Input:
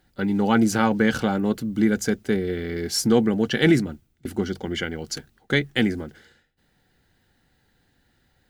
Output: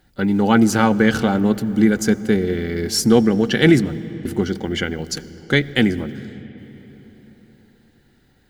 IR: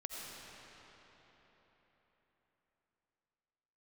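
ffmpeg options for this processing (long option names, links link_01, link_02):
-filter_complex "[0:a]asplit=2[link_01][link_02];[1:a]atrim=start_sample=2205,lowshelf=frequency=340:gain=12[link_03];[link_02][link_03]afir=irnorm=-1:irlink=0,volume=-16.5dB[link_04];[link_01][link_04]amix=inputs=2:normalize=0,volume=3.5dB"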